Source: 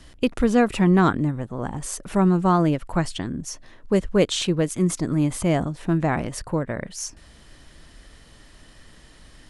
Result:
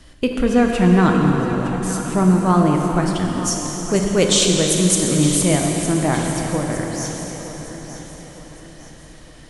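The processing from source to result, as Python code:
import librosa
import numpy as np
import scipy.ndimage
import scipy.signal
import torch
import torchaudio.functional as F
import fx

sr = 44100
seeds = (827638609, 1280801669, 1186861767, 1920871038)

y = fx.peak_eq(x, sr, hz=8200.0, db=11.5, octaves=2.2, at=(3.43, 5.84))
y = fx.echo_feedback(y, sr, ms=912, feedback_pct=42, wet_db=-13.0)
y = fx.rev_plate(y, sr, seeds[0], rt60_s=4.2, hf_ratio=0.9, predelay_ms=0, drr_db=0.5)
y = F.gain(torch.from_numpy(y), 1.0).numpy()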